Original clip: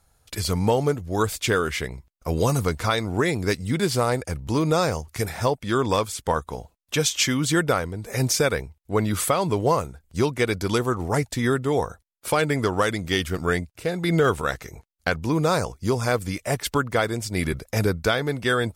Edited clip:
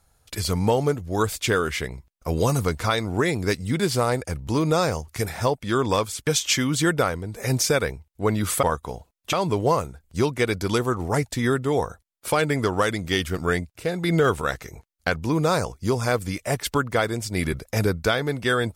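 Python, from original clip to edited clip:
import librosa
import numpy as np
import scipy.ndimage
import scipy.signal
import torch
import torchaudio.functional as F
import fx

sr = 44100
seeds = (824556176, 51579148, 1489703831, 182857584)

y = fx.edit(x, sr, fx.move(start_s=6.27, length_s=0.7, to_s=9.33), tone=tone)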